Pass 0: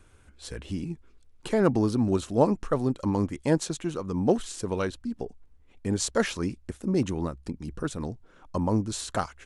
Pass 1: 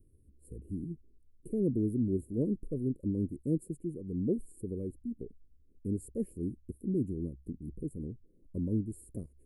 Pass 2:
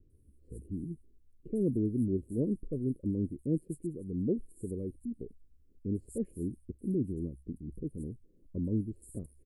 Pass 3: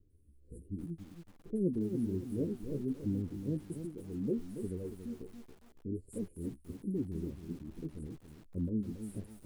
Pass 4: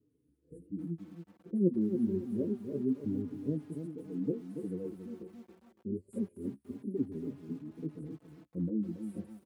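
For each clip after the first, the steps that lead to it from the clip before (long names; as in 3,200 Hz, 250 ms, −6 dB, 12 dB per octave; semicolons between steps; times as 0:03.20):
inverse Chebyshev band-stop filter 760–6,300 Hz, stop band 40 dB; level −5.5 dB
multiband delay without the direct sound lows, highs 100 ms, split 4,000 Hz
flanger 1.3 Hz, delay 9.2 ms, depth 5.9 ms, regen +34%; feedback echo at a low word length 280 ms, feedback 35%, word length 9 bits, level −8.5 dB
Chebyshev high-pass filter 190 Hz, order 2; high-shelf EQ 2,800 Hz −11 dB; barber-pole flanger 4.3 ms +0.26 Hz; level +6 dB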